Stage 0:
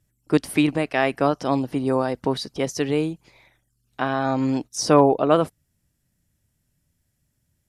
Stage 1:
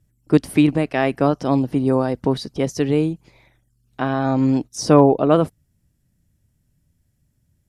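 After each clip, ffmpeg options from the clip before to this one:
ffmpeg -i in.wav -af "lowshelf=frequency=430:gain=9,volume=-1.5dB" out.wav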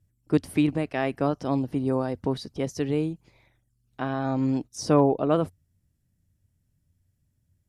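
ffmpeg -i in.wav -af "equalizer=frequency=91:width=5.2:gain=8.5,volume=-7.5dB" out.wav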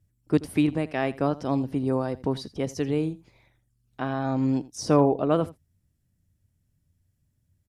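ffmpeg -i in.wav -af "aecho=1:1:83:0.112" out.wav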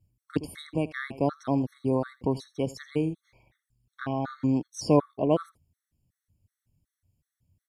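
ffmpeg -i in.wav -af "afftfilt=real='re*gt(sin(2*PI*2.7*pts/sr)*(1-2*mod(floor(b*sr/1024/1100),2)),0)':imag='im*gt(sin(2*PI*2.7*pts/sr)*(1-2*mod(floor(b*sr/1024/1100),2)),0)':win_size=1024:overlap=0.75" out.wav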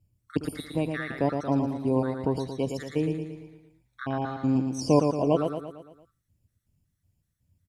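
ffmpeg -i in.wav -af "aecho=1:1:114|228|342|456|570|684:0.531|0.271|0.138|0.0704|0.0359|0.0183" out.wav

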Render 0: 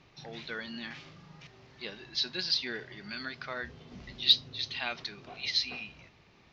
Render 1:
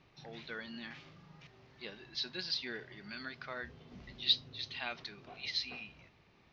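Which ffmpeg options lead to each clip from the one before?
ffmpeg -i in.wav -af "highshelf=frequency=7000:gain=-10,volume=-4.5dB" out.wav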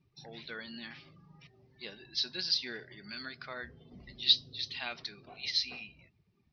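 ffmpeg -i in.wav -af "lowpass=frequency=5600:width_type=q:width=2.6,afftdn=noise_reduction=20:noise_floor=-57" out.wav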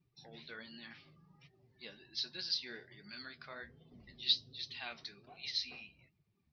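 ffmpeg -i in.wav -af "flanger=delay=5.3:depth=8.9:regen=48:speed=1.3:shape=triangular,volume=-2dB" out.wav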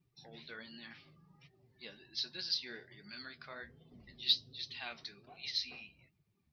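ffmpeg -i in.wav -af "aeval=exprs='0.126*(cos(1*acos(clip(val(0)/0.126,-1,1)))-cos(1*PI/2))+0.00126*(cos(7*acos(clip(val(0)/0.126,-1,1)))-cos(7*PI/2))':channel_layout=same,volume=1dB" out.wav

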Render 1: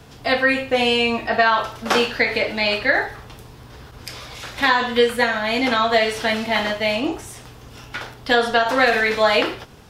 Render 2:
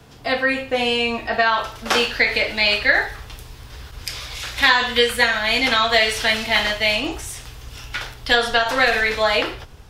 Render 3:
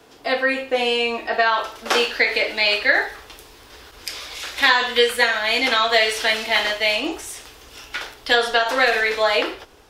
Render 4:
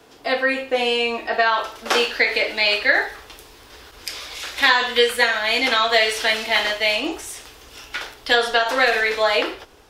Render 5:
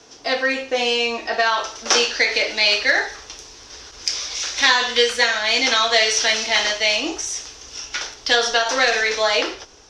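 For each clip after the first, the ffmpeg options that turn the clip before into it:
ffmpeg -i in.wav -filter_complex "[0:a]asubboost=boost=5.5:cutoff=76,acrossover=split=100|1700[link_01][link_02][link_03];[link_03]dynaudnorm=framelen=410:gausssize=9:maxgain=11.5dB[link_04];[link_01][link_02][link_04]amix=inputs=3:normalize=0,volume=-2dB" out.wav
ffmpeg -i in.wav -af "lowshelf=frequency=220:width_type=q:width=1.5:gain=-12.5,volume=-1dB" out.wav
ffmpeg -i in.wav -af anull out.wav
ffmpeg -i in.wav -filter_complex "[0:a]asplit=2[link_01][link_02];[link_02]asoftclip=type=tanh:threshold=-15.5dB,volume=-9dB[link_03];[link_01][link_03]amix=inputs=2:normalize=0,lowpass=frequency=5900:width_type=q:width=6.6,volume=-3dB" out.wav

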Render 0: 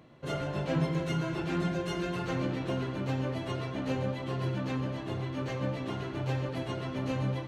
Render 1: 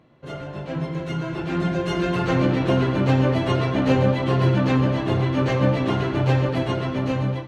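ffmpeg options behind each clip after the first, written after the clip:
ffmpeg -i in.wav -af "dynaudnorm=framelen=740:gausssize=5:maxgain=14dB,highshelf=frequency=6100:gain=-9.5" out.wav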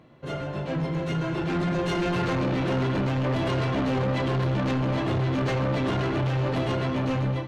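ffmpeg -i in.wav -af "alimiter=limit=-14.5dB:level=0:latency=1:release=14,asoftclip=type=tanh:threshold=-24.5dB,volume=2.5dB" out.wav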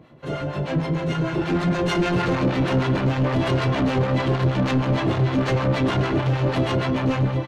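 ffmpeg -i in.wav -filter_complex "[0:a]acrossover=split=660[link_01][link_02];[link_01]aeval=exprs='val(0)*(1-0.7/2+0.7/2*cos(2*PI*6.5*n/s))':channel_layout=same[link_03];[link_02]aeval=exprs='val(0)*(1-0.7/2-0.7/2*cos(2*PI*6.5*n/s))':channel_layout=same[link_04];[link_03][link_04]amix=inputs=2:normalize=0,aresample=32000,aresample=44100,volume=7.5dB" out.wav

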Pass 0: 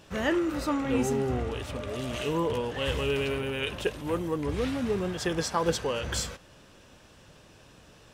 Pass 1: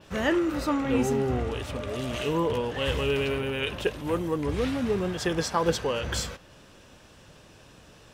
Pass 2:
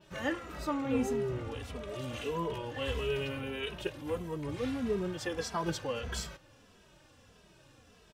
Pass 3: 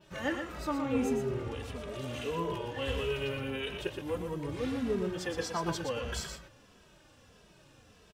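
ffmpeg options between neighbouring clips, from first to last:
ffmpeg -i in.wav -af "adynamicequalizer=threshold=0.00251:dfrequency=8500:dqfactor=0.93:tfrequency=8500:tqfactor=0.93:attack=5:release=100:ratio=0.375:range=2:mode=cutabove:tftype=bell,volume=2dB" out.wav
ffmpeg -i in.wav -filter_complex "[0:a]asplit=2[link_01][link_02];[link_02]adelay=2.7,afreqshift=-1.6[link_03];[link_01][link_03]amix=inputs=2:normalize=1,volume=-5dB" out.wav
ffmpeg -i in.wav -af "aecho=1:1:119:0.473" out.wav

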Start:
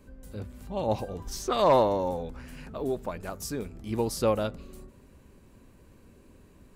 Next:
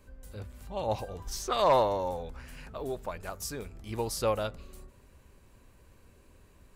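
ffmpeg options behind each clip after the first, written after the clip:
ffmpeg -i in.wav -af "equalizer=frequency=240:width_type=o:width=1.8:gain=-9" out.wav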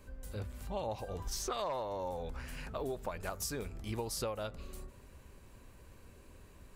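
ffmpeg -i in.wav -af "acompressor=threshold=-36dB:ratio=12,volume=2dB" out.wav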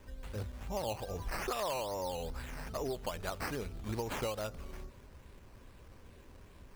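ffmpeg -i in.wav -af "acrusher=samples=10:mix=1:aa=0.000001:lfo=1:lforange=6:lforate=2.4,volume=1dB" out.wav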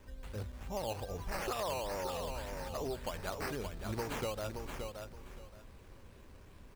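ffmpeg -i in.wav -af "aecho=1:1:573|1146|1719:0.501|0.105|0.0221,volume=-1.5dB" out.wav

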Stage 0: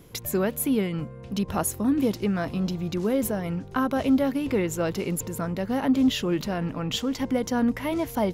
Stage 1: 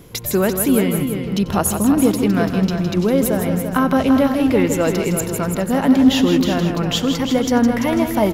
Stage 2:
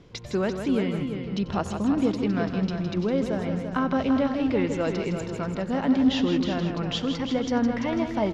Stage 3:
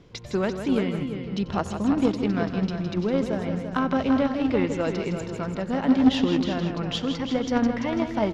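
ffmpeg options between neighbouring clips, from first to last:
ffmpeg -i in.wav -af "aecho=1:1:92|161|340|404|496:0.133|0.398|0.398|0.1|0.2,volume=7.5dB" out.wav
ffmpeg -i in.wav -af "lowpass=frequency=5500:width=0.5412,lowpass=frequency=5500:width=1.3066,volume=-8.5dB" out.wav
ffmpeg -i in.wav -af "aeval=exprs='0.299*(cos(1*acos(clip(val(0)/0.299,-1,1)))-cos(1*PI/2))+0.0473*(cos(3*acos(clip(val(0)/0.299,-1,1)))-cos(3*PI/2))':channel_layout=same,volume=5dB" out.wav

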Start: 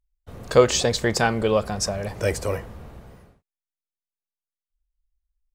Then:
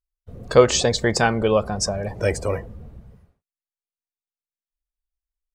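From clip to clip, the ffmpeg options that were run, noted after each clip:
ffmpeg -i in.wav -af "afftdn=noise_reduction=14:noise_floor=-37,volume=2dB" out.wav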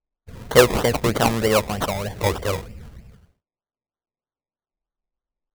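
ffmpeg -i in.wav -af "acrusher=samples=24:mix=1:aa=0.000001:lfo=1:lforange=14.4:lforate=3.2" out.wav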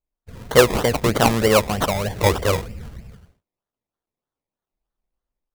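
ffmpeg -i in.wav -af "dynaudnorm=framelen=310:gausssize=3:maxgain=5dB" out.wav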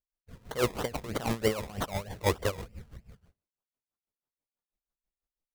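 ffmpeg -i in.wav -af "aeval=exprs='val(0)*pow(10,-18*(0.5-0.5*cos(2*PI*6.1*n/s))/20)':channel_layout=same,volume=-6.5dB" out.wav

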